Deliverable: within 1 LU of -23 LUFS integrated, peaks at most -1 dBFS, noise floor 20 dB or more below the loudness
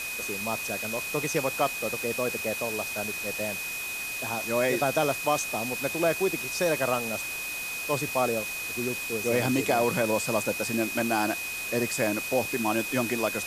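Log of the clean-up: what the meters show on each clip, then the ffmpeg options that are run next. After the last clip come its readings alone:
steady tone 2.5 kHz; tone level -33 dBFS; noise floor -34 dBFS; noise floor target -48 dBFS; loudness -27.5 LUFS; peak level -10.5 dBFS; loudness target -23.0 LUFS
-> -af "bandreject=f=2500:w=30"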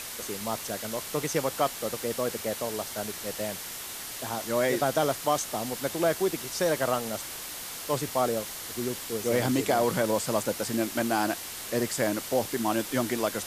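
steady tone not found; noise floor -39 dBFS; noise floor target -49 dBFS
-> -af "afftdn=nr=10:nf=-39"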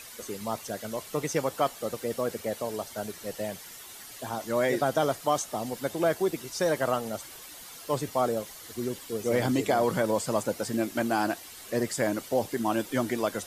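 noise floor -46 dBFS; noise floor target -50 dBFS
-> -af "afftdn=nr=6:nf=-46"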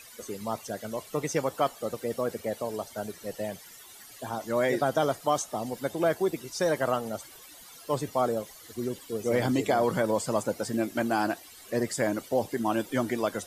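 noise floor -50 dBFS; loudness -29.5 LUFS; peak level -12.0 dBFS; loudness target -23.0 LUFS
-> -af "volume=2.11"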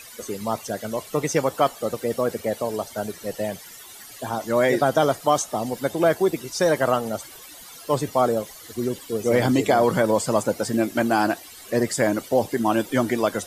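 loudness -23.0 LUFS; peak level -5.5 dBFS; noise floor -43 dBFS

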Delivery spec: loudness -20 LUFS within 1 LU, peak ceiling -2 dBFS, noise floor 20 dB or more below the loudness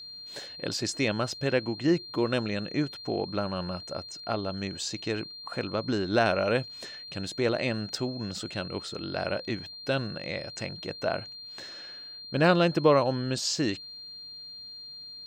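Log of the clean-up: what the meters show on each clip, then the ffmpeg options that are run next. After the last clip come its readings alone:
steady tone 4.2 kHz; tone level -41 dBFS; loudness -29.5 LUFS; peak level -8.5 dBFS; loudness target -20.0 LUFS
-> -af "bandreject=f=4200:w=30"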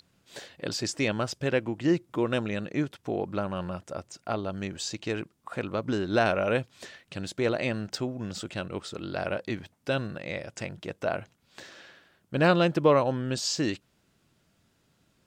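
steady tone not found; loudness -29.5 LUFS; peak level -9.0 dBFS; loudness target -20.0 LUFS
-> -af "volume=2.99,alimiter=limit=0.794:level=0:latency=1"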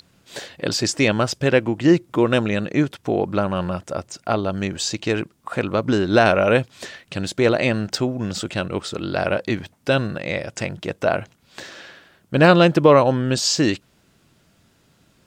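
loudness -20.5 LUFS; peak level -2.0 dBFS; noise floor -60 dBFS

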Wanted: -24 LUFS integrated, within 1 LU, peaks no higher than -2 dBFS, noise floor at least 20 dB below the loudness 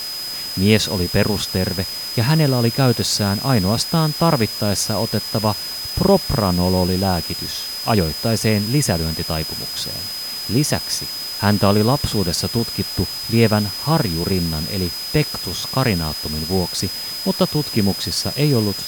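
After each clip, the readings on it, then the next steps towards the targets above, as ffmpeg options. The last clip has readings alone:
steady tone 5 kHz; tone level -26 dBFS; noise floor -28 dBFS; noise floor target -39 dBFS; loudness -19.0 LUFS; peak level -1.5 dBFS; loudness target -24.0 LUFS
-> -af "bandreject=f=5000:w=30"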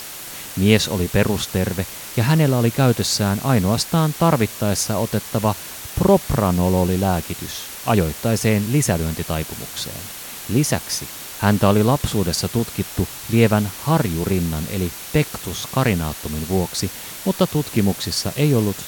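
steady tone not found; noise floor -34 dBFS; noise floor target -40 dBFS
-> -af "afftdn=nr=6:nf=-34"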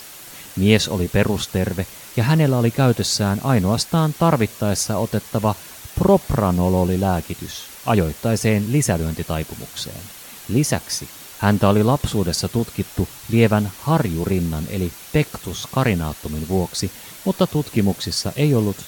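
noise floor -39 dBFS; noise floor target -41 dBFS
-> -af "afftdn=nr=6:nf=-39"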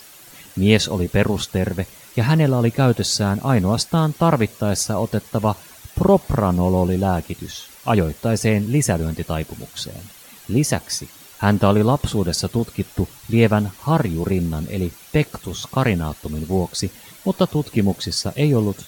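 noise floor -44 dBFS; loudness -20.5 LUFS; peak level -2.0 dBFS; loudness target -24.0 LUFS
-> -af "volume=0.668"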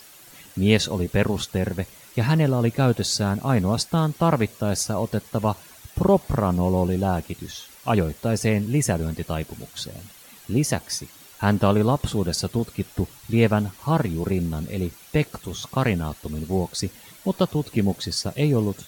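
loudness -24.0 LUFS; peak level -5.5 dBFS; noise floor -48 dBFS

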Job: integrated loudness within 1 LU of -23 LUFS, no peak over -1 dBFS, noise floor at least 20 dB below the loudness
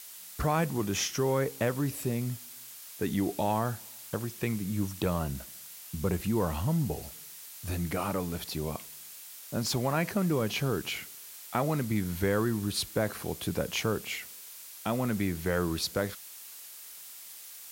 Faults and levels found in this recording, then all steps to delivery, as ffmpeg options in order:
noise floor -47 dBFS; noise floor target -52 dBFS; loudness -31.5 LUFS; peak level -13.5 dBFS; loudness target -23.0 LUFS
-> -af "afftdn=nr=6:nf=-47"
-af "volume=2.66"

